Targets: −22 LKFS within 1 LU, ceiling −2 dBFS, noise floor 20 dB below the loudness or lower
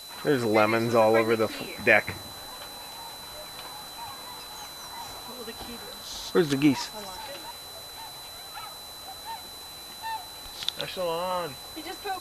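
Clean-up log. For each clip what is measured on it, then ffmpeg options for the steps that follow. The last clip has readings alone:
interfering tone 4,000 Hz; level of the tone −42 dBFS; background noise floor −42 dBFS; target noise floor −49 dBFS; integrated loudness −29.0 LKFS; sample peak −4.5 dBFS; target loudness −22.0 LKFS
→ -af "bandreject=frequency=4000:width=30"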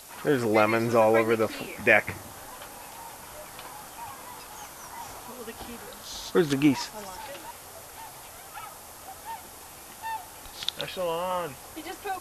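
interfering tone none found; background noise floor −46 dBFS; target noise floor −47 dBFS
→ -af "afftdn=noise_reduction=6:noise_floor=-46"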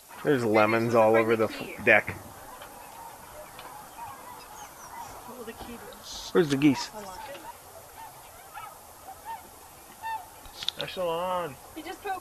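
background noise floor −49 dBFS; integrated loudness −26.0 LKFS; sample peak −5.0 dBFS; target loudness −22.0 LKFS
→ -af "volume=4dB,alimiter=limit=-2dB:level=0:latency=1"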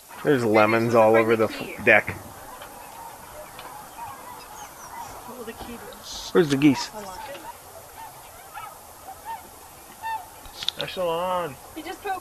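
integrated loudness −22.0 LKFS; sample peak −2.0 dBFS; background noise floor −45 dBFS

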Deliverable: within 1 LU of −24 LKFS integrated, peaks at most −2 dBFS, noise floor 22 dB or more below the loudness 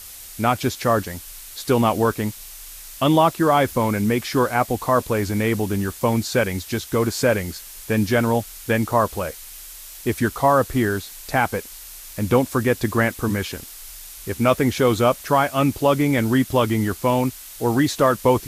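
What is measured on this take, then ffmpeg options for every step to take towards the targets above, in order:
background noise floor −39 dBFS; target noise floor −43 dBFS; integrated loudness −21.0 LKFS; sample peak −5.5 dBFS; target loudness −24.0 LKFS
→ -af "afftdn=noise_reduction=6:noise_floor=-39"
-af "volume=-3dB"

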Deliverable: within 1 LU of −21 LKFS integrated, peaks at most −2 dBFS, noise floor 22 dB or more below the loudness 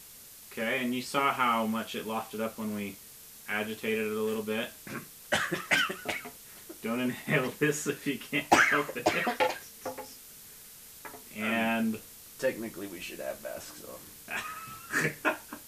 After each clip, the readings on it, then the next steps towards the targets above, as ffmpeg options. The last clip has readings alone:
background noise floor −50 dBFS; target noise floor −53 dBFS; integrated loudness −30.5 LKFS; sample peak −9.0 dBFS; target loudness −21.0 LKFS
→ -af "afftdn=noise_reduction=6:noise_floor=-50"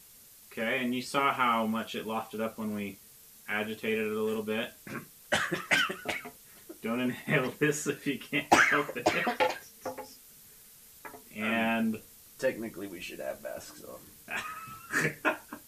background noise floor −55 dBFS; integrated loudness −30.5 LKFS; sample peak −9.0 dBFS; target loudness −21.0 LKFS
→ -af "volume=9.5dB,alimiter=limit=-2dB:level=0:latency=1"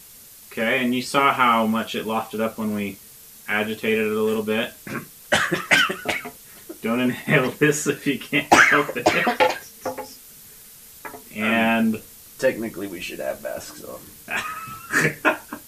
integrated loudness −21.5 LKFS; sample peak −2.0 dBFS; background noise floor −46 dBFS

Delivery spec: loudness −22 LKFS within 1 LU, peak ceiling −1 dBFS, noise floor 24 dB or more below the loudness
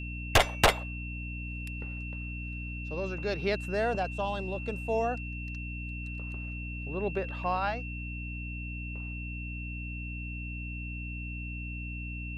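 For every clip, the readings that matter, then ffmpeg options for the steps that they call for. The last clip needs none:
mains hum 60 Hz; hum harmonics up to 300 Hz; level of the hum −36 dBFS; interfering tone 2,700 Hz; level of the tone −41 dBFS; integrated loudness −33.5 LKFS; sample peak −13.5 dBFS; target loudness −22.0 LKFS
→ -af "bandreject=frequency=60:width_type=h:width=6,bandreject=frequency=120:width_type=h:width=6,bandreject=frequency=180:width_type=h:width=6,bandreject=frequency=240:width_type=h:width=6,bandreject=frequency=300:width_type=h:width=6"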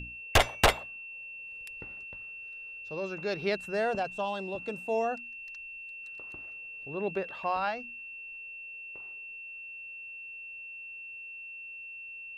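mains hum none found; interfering tone 2,700 Hz; level of the tone −41 dBFS
→ -af "bandreject=frequency=2700:width=30"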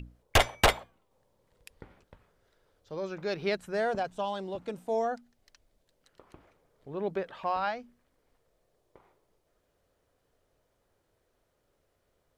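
interfering tone none found; integrated loudness −31.5 LKFS; sample peak −12.5 dBFS; target loudness −22.0 LKFS
→ -af "volume=9.5dB"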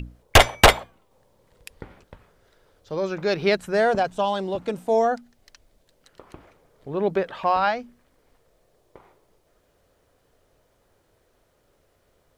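integrated loudness −22.0 LKFS; sample peak −3.0 dBFS; background noise floor −65 dBFS

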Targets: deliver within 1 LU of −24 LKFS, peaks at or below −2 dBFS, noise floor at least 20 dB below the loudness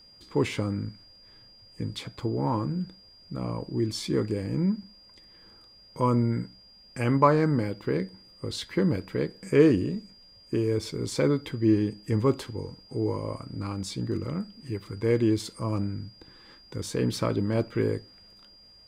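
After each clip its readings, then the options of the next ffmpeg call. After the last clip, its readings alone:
interfering tone 4,800 Hz; level of the tone −52 dBFS; integrated loudness −28.0 LKFS; sample peak −7.0 dBFS; target loudness −24.0 LKFS
→ -af "bandreject=frequency=4800:width=30"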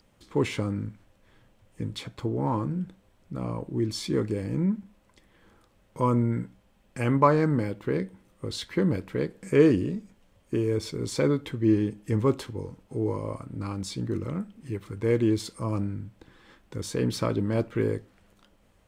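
interfering tone none found; integrated loudness −28.0 LKFS; sample peak −7.0 dBFS; target loudness −24.0 LKFS
→ -af "volume=4dB"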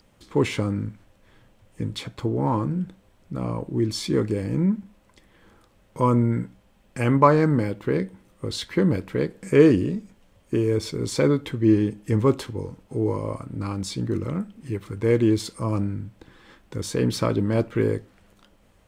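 integrated loudness −24.0 LKFS; sample peak −3.0 dBFS; background noise floor −59 dBFS

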